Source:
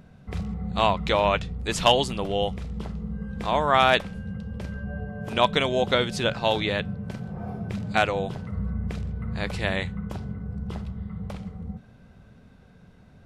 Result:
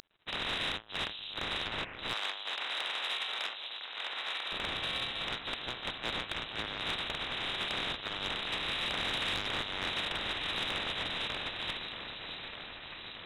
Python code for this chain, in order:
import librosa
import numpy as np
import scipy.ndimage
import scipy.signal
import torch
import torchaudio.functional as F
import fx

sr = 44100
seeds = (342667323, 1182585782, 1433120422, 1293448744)

y = fx.spec_flatten(x, sr, power=0.14)
y = fx.over_compress(y, sr, threshold_db=-30.0, ratio=-0.5)
y = np.sign(y) * np.maximum(np.abs(y) - 10.0 ** (-41.0 / 20.0), 0.0)
y = fx.echo_alternate(y, sr, ms=616, hz=1200.0, feedback_pct=78, wet_db=-8)
y = fx.freq_invert(y, sr, carrier_hz=3900)
y = 10.0 ** (-26.0 / 20.0) * np.tanh(y / 10.0 ** (-26.0 / 20.0))
y = fx.highpass(y, sr, hz=620.0, slope=12, at=(2.13, 4.52))